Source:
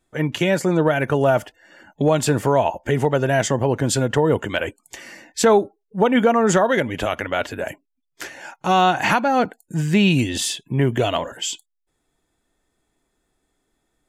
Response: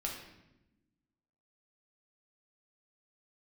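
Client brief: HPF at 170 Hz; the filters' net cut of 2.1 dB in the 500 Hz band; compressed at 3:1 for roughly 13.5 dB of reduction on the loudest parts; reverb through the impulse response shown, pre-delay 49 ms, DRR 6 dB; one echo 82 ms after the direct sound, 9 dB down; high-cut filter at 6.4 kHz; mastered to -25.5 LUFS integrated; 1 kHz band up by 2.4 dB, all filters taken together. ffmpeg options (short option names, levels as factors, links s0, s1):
-filter_complex "[0:a]highpass=170,lowpass=6400,equalizer=f=500:t=o:g=-4,equalizer=f=1000:t=o:g=5,acompressor=threshold=0.0316:ratio=3,aecho=1:1:82:0.355,asplit=2[s0][s1];[1:a]atrim=start_sample=2205,adelay=49[s2];[s1][s2]afir=irnorm=-1:irlink=0,volume=0.422[s3];[s0][s3]amix=inputs=2:normalize=0,volume=1.68"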